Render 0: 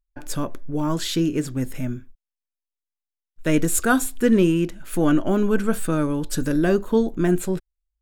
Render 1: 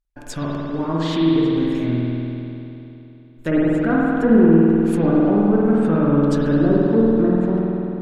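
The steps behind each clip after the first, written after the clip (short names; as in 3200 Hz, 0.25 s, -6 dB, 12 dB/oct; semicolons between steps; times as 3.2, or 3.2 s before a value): added harmonics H 6 -15 dB, 8 -17 dB, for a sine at -3.5 dBFS; treble ducked by the level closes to 840 Hz, closed at -16 dBFS; spring tank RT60 3.1 s, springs 49 ms, chirp 60 ms, DRR -5 dB; gain -1 dB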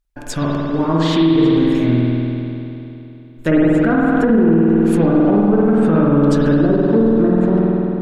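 limiter -11.5 dBFS, peak gain reduction 9.5 dB; gain +6 dB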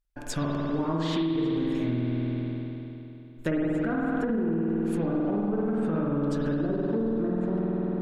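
compressor, threshold -17 dBFS, peak gain reduction 8 dB; gain -7 dB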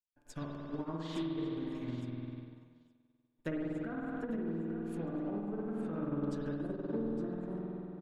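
feedback echo 0.862 s, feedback 45%, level -13 dB; upward expander 2.5:1, over -43 dBFS; gain -7.5 dB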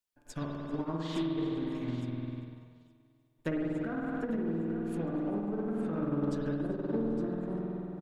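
in parallel at -10 dB: one-sided clip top -43 dBFS; on the sum: feedback echo 0.393 s, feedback 44%, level -23 dB; gain +2.5 dB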